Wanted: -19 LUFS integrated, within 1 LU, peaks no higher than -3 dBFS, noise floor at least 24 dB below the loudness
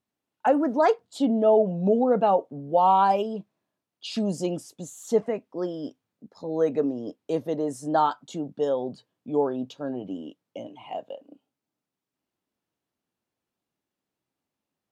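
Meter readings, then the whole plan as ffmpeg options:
loudness -25.0 LUFS; peak -10.0 dBFS; loudness target -19.0 LUFS
-> -af "volume=6dB"

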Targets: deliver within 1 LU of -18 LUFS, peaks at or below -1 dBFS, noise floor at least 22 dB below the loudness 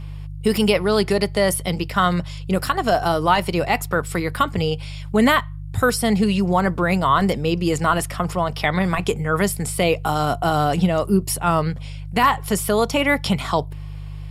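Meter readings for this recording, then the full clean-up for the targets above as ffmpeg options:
hum 50 Hz; harmonics up to 150 Hz; hum level -30 dBFS; loudness -20.5 LUFS; peak -4.5 dBFS; loudness target -18.0 LUFS
-> -af "bandreject=f=50:t=h:w=4,bandreject=f=100:t=h:w=4,bandreject=f=150:t=h:w=4"
-af "volume=2.5dB"

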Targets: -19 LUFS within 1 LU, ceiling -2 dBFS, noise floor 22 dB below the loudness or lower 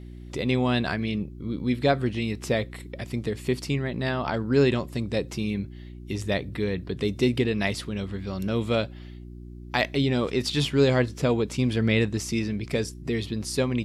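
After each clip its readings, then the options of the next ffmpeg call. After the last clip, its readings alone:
hum 60 Hz; harmonics up to 360 Hz; hum level -38 dBFS; loudness -26.5 LUFS; peak -8.0 dBFS; loudness target -19.0 LUFS
-> -af "bandreject=f=60:t=h:w=4,bandreject=f=120:t=h:w=4,bandreject=f=180:t=h:w=4,bandreject=f=240:t=h:w=4,bandreject=f=300:t=h:w=4,bandreject=f=360:t=h:w=4"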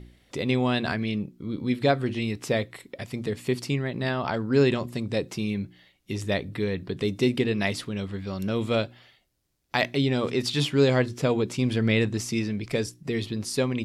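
hum none; loudness -27.0 LUFS; peak -8.0 dBFS; loudness target -19.0 LUFS
-> -af "volume=8dB,alimiter=limit=-2dB:level=0:latency=1"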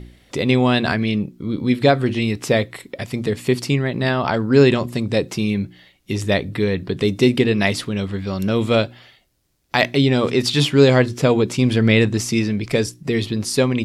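loudness -19.0 LUFS; peak -2.0 dBFS; noise floor -57 dBFS

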